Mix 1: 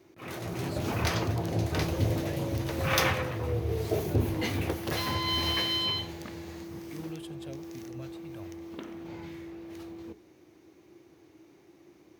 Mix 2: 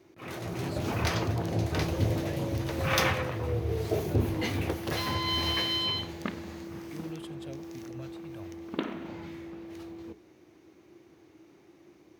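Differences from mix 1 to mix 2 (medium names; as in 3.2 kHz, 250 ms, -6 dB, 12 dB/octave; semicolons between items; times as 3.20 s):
second sound +10.5 dB; master: add treble shelf 9.6 kHz -4.5 dB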